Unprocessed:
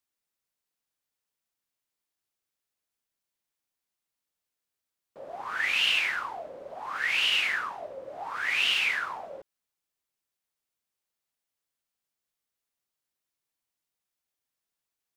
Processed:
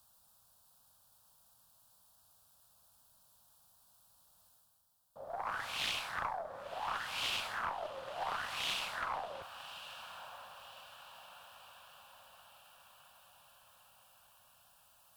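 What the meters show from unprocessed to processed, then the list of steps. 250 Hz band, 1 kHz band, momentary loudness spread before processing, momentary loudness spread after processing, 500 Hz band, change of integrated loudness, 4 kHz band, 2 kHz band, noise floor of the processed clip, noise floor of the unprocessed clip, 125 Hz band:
-4.0 dB, -2.0 dB, 18 LU, 21 LU, -3.5 dB, -13.5 dB, -11.0 dB, -13.5 dB, -68 dBFS, under -85 dBFS, no reading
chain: fifteen-band graphic EQ 100 Hz +4 dB, 400 Hz -6 dB, 2.5 kHz -6 dB, 6.3 kHz -7 dB; reverse; upward compressor, threshold -44 dBFS; reverse; static phaser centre 850 Hz, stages 4; echo that smears into a reverb 1159 ms, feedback 54%, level -11.5 dB; Chebyshev shaper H 4 -19 dB, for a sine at -23 dBFS; loudspeaker Doppler distortion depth 0.68 ms

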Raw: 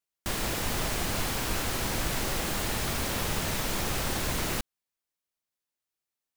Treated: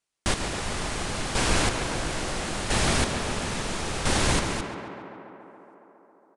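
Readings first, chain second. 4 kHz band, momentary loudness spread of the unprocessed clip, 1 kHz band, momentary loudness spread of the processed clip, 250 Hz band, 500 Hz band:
+3.5 dB, 2 LU, +4.5 dB, 14 LU, +4.5 dB, +4.5 dB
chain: square tremolo 0.74 Hz, depth 60%, duty 25%; tape echo 139 ms, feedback 85%, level -7 dB, low-pass 2.8 kHz; resampled via 22.05 kHz; trim +7.5 dB

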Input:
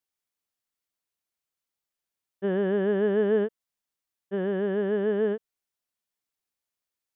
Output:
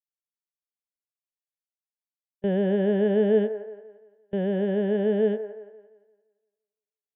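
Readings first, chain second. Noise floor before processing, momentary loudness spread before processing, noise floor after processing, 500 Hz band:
under -85 dBFS, 9 LU, under -85 dBFS, +1.5 dB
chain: static phaser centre 320 Hz, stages 6; gate with hold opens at -28 dBFS; feedback echo behind a band-pass 172 ms, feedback 41%, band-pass 880 Hz, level -9 dB; trim +4.5 dB

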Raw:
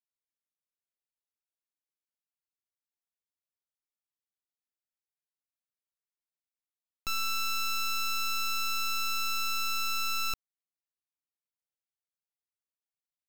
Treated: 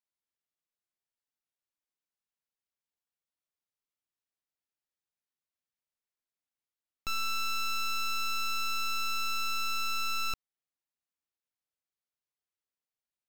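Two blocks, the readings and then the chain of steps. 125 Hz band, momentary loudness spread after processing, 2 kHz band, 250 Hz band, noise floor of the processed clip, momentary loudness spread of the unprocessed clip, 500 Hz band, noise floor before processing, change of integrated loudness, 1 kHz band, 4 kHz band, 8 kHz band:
no reading, 3 LU, -0.5 dB, 0.0 dB, under -85 dBFS, 3 LU, 0.0 dB, under -85 dBFS, -1.5 dB, 0.0 dB, -2.0 dB, -3.5 dB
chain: treble shelf 7.4 kHz -7.5 dB

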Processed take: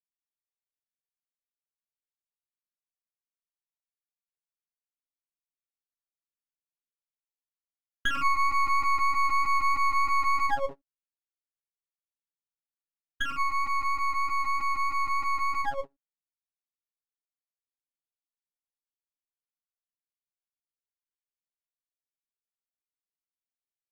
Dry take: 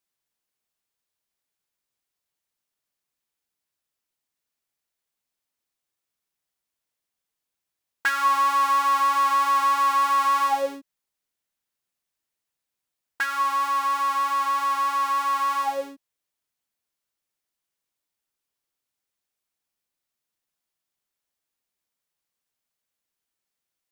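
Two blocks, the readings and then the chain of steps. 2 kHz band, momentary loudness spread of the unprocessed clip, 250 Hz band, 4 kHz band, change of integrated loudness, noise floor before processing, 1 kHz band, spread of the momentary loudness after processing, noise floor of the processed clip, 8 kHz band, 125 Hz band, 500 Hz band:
-1.0 dB, 8 LU, -8.0 dB, -5.0 dB, -5.0 dB, -85 dBFS, -6.0 dB, 8 LU, under -85 dBFS, -8.5 dB, no reading, -6.5 dB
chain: resonances exaggerated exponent 3; gate -29 dBFS, range -28 dB; half-wave rectifier

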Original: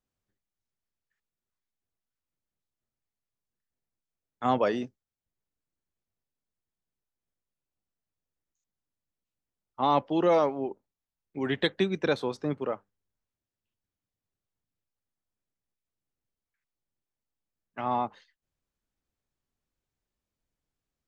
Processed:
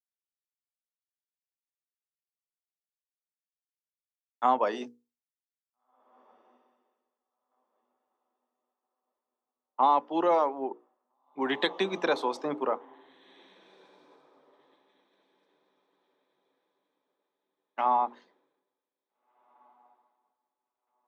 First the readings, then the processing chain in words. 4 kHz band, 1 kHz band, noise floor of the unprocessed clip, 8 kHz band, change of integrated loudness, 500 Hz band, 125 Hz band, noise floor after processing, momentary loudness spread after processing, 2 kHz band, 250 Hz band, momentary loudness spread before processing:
0.0 dB, +3.5 dB, under -85 dBFS, no reading, 0.0 dB, -2.0 dB, -14.5 dB, under -85 dBFS, 14 LU, 0.0 dB, -4.0 dB, 13 LU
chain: high-pass 230 Hz 24 dB/octave; peaking EQ 940 Hz +10.5 dB 0.82 oct; hum notches 60/120/180/240/300/360/420/480 Hz; compression 4:1, threshold -28 dBFS, peak gain reduction 13.5 dB; echo that smears into a reverb 1779 ms, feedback 50%, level -14.5 dB; three bands expanded up and down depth 100%; trim -2.5 dB

